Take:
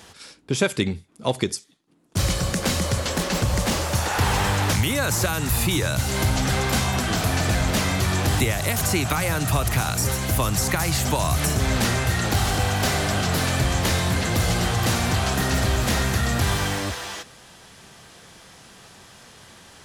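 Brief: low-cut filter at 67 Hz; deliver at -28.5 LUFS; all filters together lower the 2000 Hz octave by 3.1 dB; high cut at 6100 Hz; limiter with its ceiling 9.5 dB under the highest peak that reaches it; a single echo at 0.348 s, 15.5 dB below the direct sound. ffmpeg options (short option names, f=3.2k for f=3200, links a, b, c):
-af "highpass=67,lowpass=6.1k,equalizer=f=2k:t=o:g=-4,alimiter=limit=-17dB:level=0:latency=1,aecho=1:1:348:0.168,volume=-2dB"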